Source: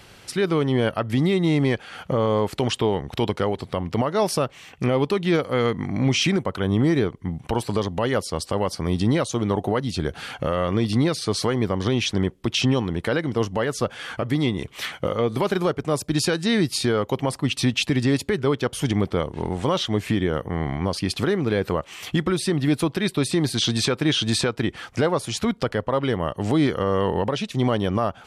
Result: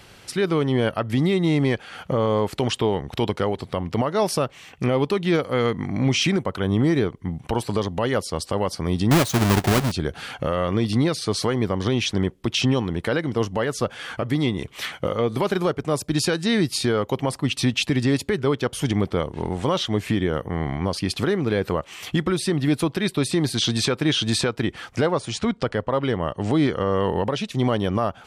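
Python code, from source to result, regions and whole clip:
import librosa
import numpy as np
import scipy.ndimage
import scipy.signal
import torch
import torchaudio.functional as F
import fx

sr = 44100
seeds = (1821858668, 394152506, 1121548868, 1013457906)

y = fx.chain(x, sr, fx.halfwave_hold(),
    fx.peak_eq(hz=490.0, db=-9.0, octaves=0.21), at=(9.11, 9.92))
y = fx.chain(y, sr, fx.brickwall_lowpass(high_hz=9800.0),
    fx.high_shelf(hz=6500.0, db=-4.5), at=(25.07, 27.04))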